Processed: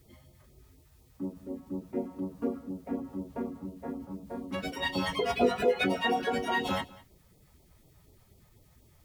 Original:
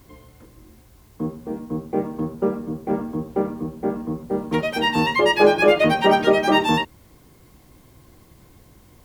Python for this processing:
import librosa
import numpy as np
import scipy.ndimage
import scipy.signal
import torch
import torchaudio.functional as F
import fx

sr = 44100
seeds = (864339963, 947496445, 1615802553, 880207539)

y = fx.pitch_keep_formants(x, sr, semitones=3.0)
y = fx.filter_lfo_notch(y, sr, shape='sine', hz=4.1, low_hz=290.0, high_hz=1700.0, q=0.73)
y = y + 10.0 ** (-21.5 / 20.0) * np.pad(y, (int(199 * sr / 1000.0), 0))[:len(y)]
y = y * 10.0 ** (-8.5 / 20.0)